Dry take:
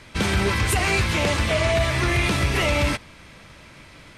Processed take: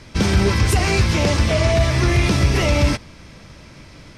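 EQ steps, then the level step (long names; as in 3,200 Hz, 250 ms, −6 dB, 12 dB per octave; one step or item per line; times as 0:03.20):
tilt shelving filter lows +4.5 dB, about 650 Hz
parametric band 5,400 Hz +9.5 dB 0.58 octaves
+2.5 dB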